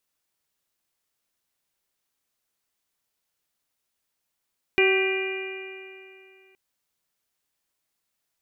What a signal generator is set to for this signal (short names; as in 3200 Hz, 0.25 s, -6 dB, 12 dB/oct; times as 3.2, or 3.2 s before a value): stretched partials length 1.77 s, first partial 380 Hz, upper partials -13/-18/-13.5/-9/-1/-11 dB, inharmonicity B 0.0028, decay 2.59 s, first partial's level -18 dB